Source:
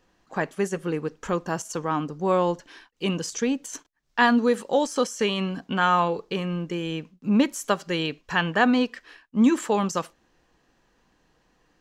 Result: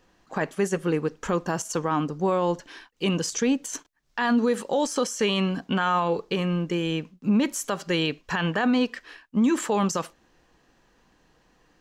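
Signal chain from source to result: peak limiter -17.5 dBFS, peak gain reduction 11 dB; trim +3 dB

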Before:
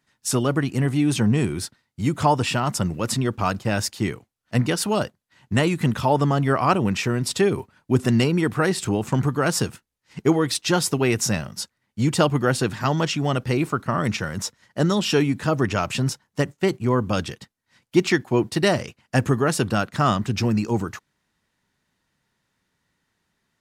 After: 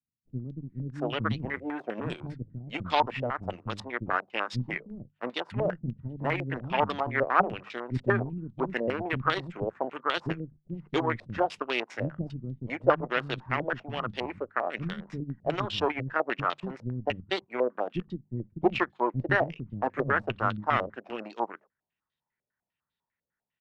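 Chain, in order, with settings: hum notches 50/100/150/200 Hz; Chebyshev shaper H 2 -17 dB, 7 -19 dB, 8 -33 dB, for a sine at -4.5 dBFS; bands offset in time lows, highs 680 ms, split 270 Hz; step-sequenced low-pass 10 Hz 550–3600 Hz; trim -6.5 dB

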